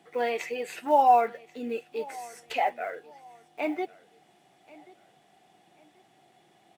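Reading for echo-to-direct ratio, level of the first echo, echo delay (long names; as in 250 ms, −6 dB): −21.5 dB, −22.0 dB, 1,084 ms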